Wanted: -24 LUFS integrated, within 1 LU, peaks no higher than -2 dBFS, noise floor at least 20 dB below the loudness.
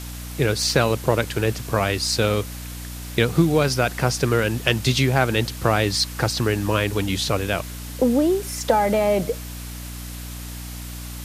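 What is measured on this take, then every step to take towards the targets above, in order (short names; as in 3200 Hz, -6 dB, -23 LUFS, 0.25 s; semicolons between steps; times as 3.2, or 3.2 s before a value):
hum 60 Hz; harmonics up to 300 Hz; hum level -33 dBFS; noise floor -34 dBFS; noise floor target -42 dBFS; loudness -21.5 LUFS; peak -3.5 dBFS; loudness target -24.0 LUFS
-> de-hum 60 Hz, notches 5; denoiser 8 dB, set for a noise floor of -34 dBFS; gain -2.5 dB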